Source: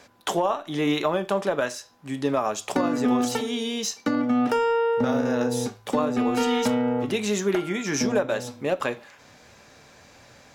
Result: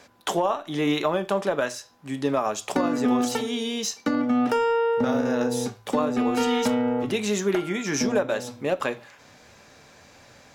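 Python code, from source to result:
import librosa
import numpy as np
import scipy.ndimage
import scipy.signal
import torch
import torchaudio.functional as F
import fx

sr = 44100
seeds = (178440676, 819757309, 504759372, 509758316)

y = fx.hum_notches(x, sr, base_hz=60, count=2)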